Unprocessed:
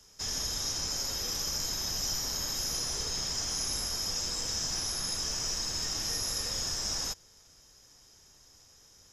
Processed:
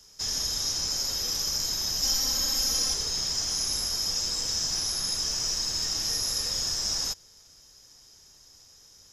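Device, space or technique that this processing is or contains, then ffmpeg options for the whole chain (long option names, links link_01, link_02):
presence and air boost: -filter_complex "[0:a]asettb=1/sr,asplit=3[link_01][link_02][link_03];[link_01]atrim=end=2.024[link_04];[link_02]atrim=start=2.02:end=2.94,asetpts=PTS-STARTPTS,afade=type=in:duration=0.004:curve=qsin,afade=type=out:start_time=0.916:duration=0.004:curve=qsin,aecho=1:1:3.8:0.94,atrim=end_sample=40572[link_05];[link_03]atrim=start=2.936[link_06];[link_04][link_05]acrossfade=duration=0.004:curve1=hsin:curve2=qsin[link_07];[link_07][link_06]acrossfade=duration=0.004:curve1=qsin:curve2=hsin,equalizer=frequency=4700:width_type=o:width=0.82:gain=5,highshelf=frequency=10000:gain=5.5"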